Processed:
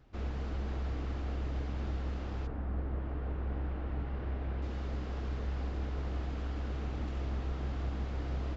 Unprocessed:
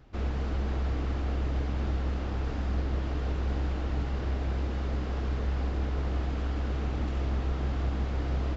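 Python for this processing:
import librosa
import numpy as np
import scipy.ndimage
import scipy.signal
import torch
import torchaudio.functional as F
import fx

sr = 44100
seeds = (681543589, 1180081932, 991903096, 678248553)

y = fx.lowpass(x, sr, hz=fx.line((2.46, 1500.0), (4.61, 2800.0)), slope=12, at=(2.46, 4.61), fade=0.02)
y = y * 10.0 ** (-6.0 / 20.0)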